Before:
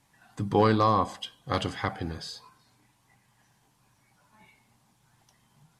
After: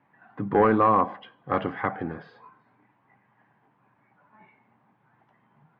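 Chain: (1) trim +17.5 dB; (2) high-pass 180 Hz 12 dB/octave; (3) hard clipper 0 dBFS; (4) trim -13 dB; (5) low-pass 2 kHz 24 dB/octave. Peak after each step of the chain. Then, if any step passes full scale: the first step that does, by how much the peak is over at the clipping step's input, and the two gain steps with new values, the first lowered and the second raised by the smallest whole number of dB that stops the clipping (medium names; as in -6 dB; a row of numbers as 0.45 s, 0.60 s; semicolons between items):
+6.0 dBFS, +7.0 dBFS, 0.0 dBFS, -13.0 dBFS, -12.0 dBFS; step 1, 7.0 dB; step 1 +10.5 dB, step 4 -6 dB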